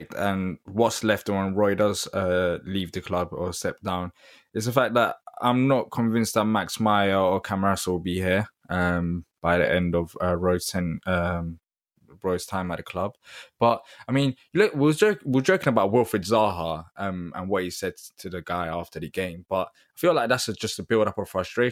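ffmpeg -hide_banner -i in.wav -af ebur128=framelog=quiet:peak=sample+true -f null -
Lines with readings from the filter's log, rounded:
Integrated loudness:
  I:         -25.0 LUFS
  Threshold: -35.2 LUFS
Loudness range:
  LRA:         5.4 LU
  Threshold: -45.2 LUFS
  LRA low:   -28.3 LUFS
  LRA high:  -23.0 LUFS
Sample peak:
  Peak:       -4.5 dBFS
True peak:
  Peak:       -4.5 dBFS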